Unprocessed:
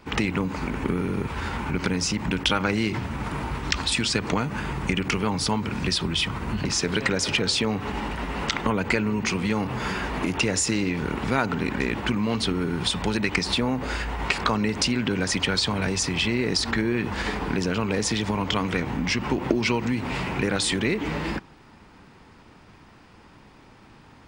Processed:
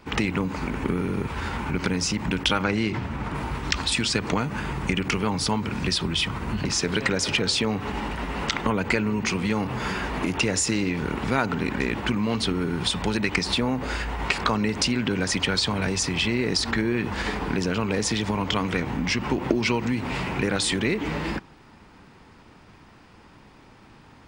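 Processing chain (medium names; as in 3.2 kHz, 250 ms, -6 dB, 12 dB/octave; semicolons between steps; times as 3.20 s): 2.63–3.34 s: treble shelf 9.4 kHz -> 5.3 kHz -10.5 dB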